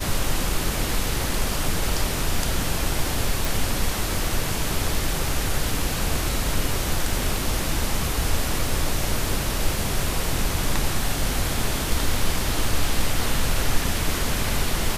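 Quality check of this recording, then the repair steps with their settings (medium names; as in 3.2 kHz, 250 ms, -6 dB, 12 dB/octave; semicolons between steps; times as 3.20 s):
3.45 s: pop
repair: de-click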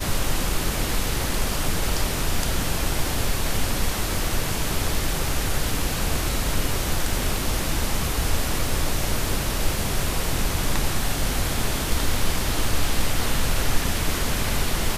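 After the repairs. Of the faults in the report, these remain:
nothing left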